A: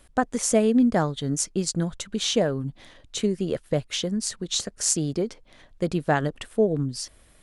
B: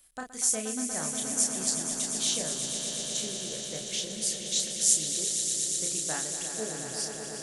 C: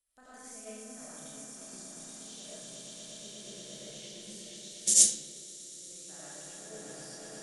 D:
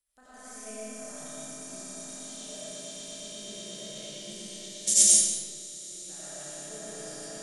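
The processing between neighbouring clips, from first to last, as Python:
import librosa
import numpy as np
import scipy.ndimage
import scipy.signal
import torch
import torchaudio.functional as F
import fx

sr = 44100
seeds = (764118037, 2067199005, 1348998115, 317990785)

y1 = F.preemphasis(torch.from_numpy(x), 0.9).numpy()
y1 = fx.doubler(y1, sr, ms=32.0, db=-4)
y1 = fx.echo_swell(y1, sr, ms=119, loudest=5, wet_db=-9.0)
y2 = fx.level_steps(y1, sr, step_db=22)
y2 = fx.rev_freeverb(y2, sr, rt60_s=1.3, hf_ratio=0.65, predelay_ms=45, drr_db=-8.5)
y2 = fx.upward_expand(y2, sr, threshold_db=-57.0, expansion=1.5)
y3 = y2 + 10.0 ** (-12.0 / 20.0) * np.pad(y2, (int(181 * sr / 1000.0), 0))[:len(y2)]
y3 = fx.rev_freeverb(y3, sr, rt60_s=0.88, hf_ratio=0.8, predelay_ms=50, drr_db=0.0)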